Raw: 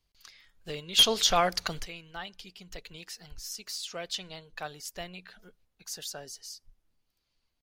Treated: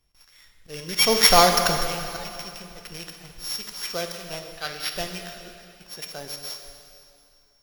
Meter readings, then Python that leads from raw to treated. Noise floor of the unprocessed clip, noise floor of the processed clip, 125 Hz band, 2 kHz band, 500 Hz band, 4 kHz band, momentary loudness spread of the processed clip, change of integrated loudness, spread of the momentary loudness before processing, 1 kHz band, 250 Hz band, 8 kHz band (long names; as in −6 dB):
−79 dBFS, −59 dBFS, +9.0 dB, +10.0 dB, +9.0 dB, +3.5 dB, 23 LU, +6.5 dB, 24 LU, +9.5 dB, +9.0 dB, +7.0 dB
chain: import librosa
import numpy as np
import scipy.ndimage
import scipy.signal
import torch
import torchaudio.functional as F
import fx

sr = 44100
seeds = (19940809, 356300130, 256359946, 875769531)

p1 = np.r_[np.sort(x[:len(x) // 8 * 8].reshape(-1, 8), axis=1).ravel(), x[len(x) // 8 * 8:]]
p2 = fx.spec_box(p1, sr, start_s=4.57, length_s=0.36, low_hz=1200.0, high_hz=5000.0, gain_db=10)
p3 = np.where(np.abs(p2) >= 10.0 ** (-43.5 / 20.0), p2, 0.0)
p4 = p2 + F.gain(torch.from_numpy(p3), -9.0).numpy()
p5 = fx.auto_swell(p4, sr, attack_ms=175.0)
p6 = fx.rev_plate(p5, sr, seeds[0], rt60_s=2.6, hf_ratio=0.9, predelay_ms=0, drr_db=4.0)
y = F.gain(torch.from_numpy(p6), 6.0).numpy()